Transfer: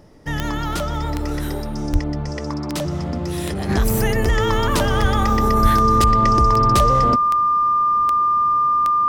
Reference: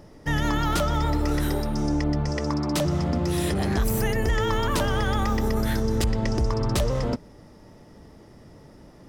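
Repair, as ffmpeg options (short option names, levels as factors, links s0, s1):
-filter_complex "[0:a]adeclick=t=4,bandreject=f=1200:w=30,asplit=3[s0][s1][s2];[s0]afade=t=out:st=1.92:d=0.02[s3];[s1]highpass=f=140:w=0.5412,highpass=f=140:w=1.3066,afade=t=in:st=1.92:d=0.02,afade=t=out:st=2.04:d=0.02[s4];[s2]afade=t=in:st=2.04:d=0.02[s5];[s3][s4][s5]amix=inputs=3:normalize=0,asplit=3[s6][s7][s8];[s6]afade=t=out:st=5.01:d=0.02[s9];[s7]highpass=f=140:w=0.5412,highpass=f=140:w=1.3066,afade=t=in:st=5.01:d=0.02,afade=t=out:st=5.13:d=0.02[s10];[s8]afade=t=in:st=5.13:d=0.02[s11];[s9][s10][s11]amix=inputs=3:normalize=0,asplit=3[s12][s13][s14];[s12]afade=t=out:st=5.62:d=0.02[s15];[s13]highpass=f=140:w=0.5412,highpass=f=140:w=1.3066,afade=t=in:st=5.62:d=0.02,afade=t=out:st=5.74:d=0.02[s16];[s14]afade=t=in:st=5.74:d=0.02[s17];[s15][s16][s17]amix=inputs=3:normalize=0,asetnsamples=n=441:p=0,asendcmd='3.69 volume volume -5.5dB',volume=1"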